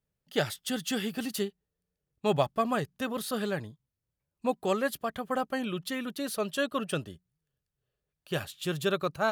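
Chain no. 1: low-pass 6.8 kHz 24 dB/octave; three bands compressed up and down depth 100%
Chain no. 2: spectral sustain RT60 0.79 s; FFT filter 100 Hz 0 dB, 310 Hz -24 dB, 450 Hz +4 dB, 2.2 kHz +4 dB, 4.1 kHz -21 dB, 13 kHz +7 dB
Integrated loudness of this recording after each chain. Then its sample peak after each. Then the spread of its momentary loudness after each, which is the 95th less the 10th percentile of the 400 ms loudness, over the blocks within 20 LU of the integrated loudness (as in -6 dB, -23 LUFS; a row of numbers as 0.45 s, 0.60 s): -31.5 LUFS, -27.5 LUFS; -13.5 dBFS, -8.5 dBFS; 4 LU, 10 LU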